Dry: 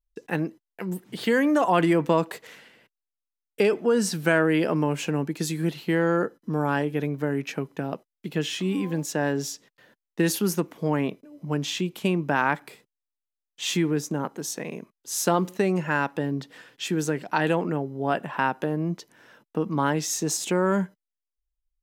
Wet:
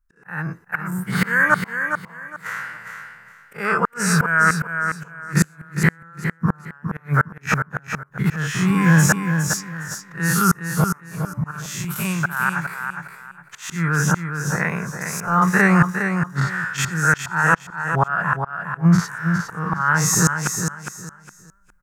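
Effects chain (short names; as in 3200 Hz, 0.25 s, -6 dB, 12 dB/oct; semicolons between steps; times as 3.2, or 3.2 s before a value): spectral dilation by 0.12 s; 11.51–12.5 pre-emphasis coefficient 0.8; 14.33–15.42 de-esser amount 95%; EQ curve 110 Hz 0 dB, 170 Hz +2 dB, 260 Hz -19 dB, 630 Hz -10 dB, 1400 Hz +12 dB, 3200 Hz -17 dB, 6600 Hz -6 dB; limiter -11 dBFS, peak gain reduction 9 dB; auto swell 0.563 s; AGC gain up to 11 dB; flipped gate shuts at -8 dBFS, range -38 dB; on a send: feedback echo 0.41 s, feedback 25%, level -7 dB; on the sum: gain +4 dB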